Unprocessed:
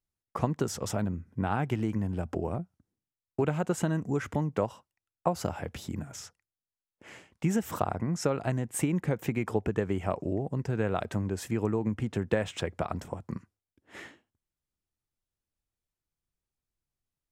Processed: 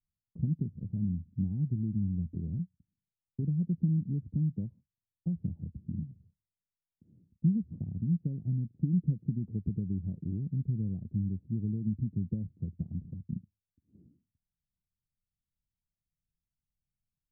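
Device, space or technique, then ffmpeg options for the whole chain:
the neighbour's flat through the wall: -af "lowpass=f=220:w=0.5412,lowpass=f=220:w=1.3066,equalizer=f=170:t=o:w=0.45:g=4"

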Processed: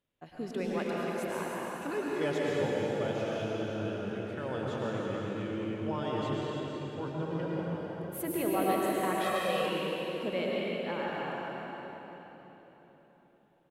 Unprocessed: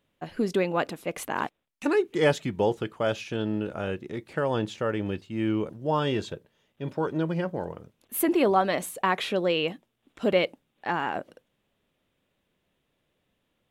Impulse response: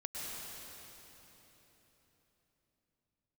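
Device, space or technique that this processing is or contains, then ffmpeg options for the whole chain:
cave: -filter_complex "[0:a]aecho=1:1:317:0.355[a];[1:a]atrim=start_sample=2205[b];[a][b]afir=irnorm=-1:irlink=0,asettb=1/sr,asplit=3[c][d][e];[c]atrim=end=9.244[f];[d]atrim=start=9.24:end=9.66,asetpts=PTS-STARTPTS,afade=t=in:d=0.004:c=qsin,afade=t=out:st=0.416:d=0.004:c=qsin,aecho=1:1:1.6:0.68,atrim=end_sample=18522[g];[e]atrim=start=9.656[h];[f][g]acrossfade=d=0.004:c1=hsin:c2=qsin[i];[i][h]acrossfade=d=0.004:c1=qsin:c2=hsin,volume=-7.5dB"

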